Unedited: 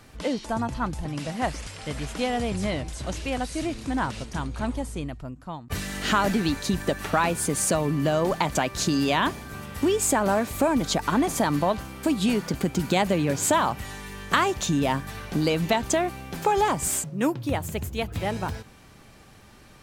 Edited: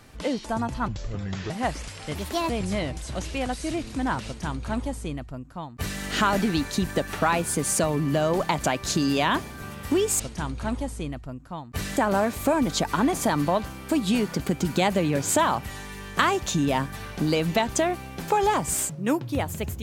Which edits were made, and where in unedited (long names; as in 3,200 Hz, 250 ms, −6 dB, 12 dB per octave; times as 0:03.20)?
0:00.88–0:01.29: play speed 66%
0:01.94–0:02.41: play speed 136%
0:04.16–0:05.93: duplicate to 0:10.11